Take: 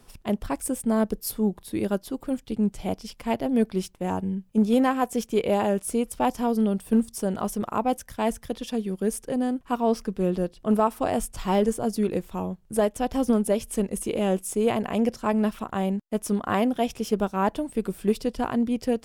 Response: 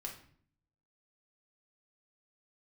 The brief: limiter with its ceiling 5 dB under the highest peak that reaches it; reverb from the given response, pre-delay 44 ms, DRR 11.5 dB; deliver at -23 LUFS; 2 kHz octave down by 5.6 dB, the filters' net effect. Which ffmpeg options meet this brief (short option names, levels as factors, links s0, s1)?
-filter_complex "[0:a]equalizer=f=2000:t=o:g=-7.5,alimiter=limit=0.158:level=0:latency=1,asplit=2[s0][s1];[1:a]atrim=start_sample=2205,adelay=44[s2];[s1][s2]afir=irnorm=-1:irlink=0,volume=0.335[s3];[s0][s3]amix=inputs=2:normalize=0,volume=1.68"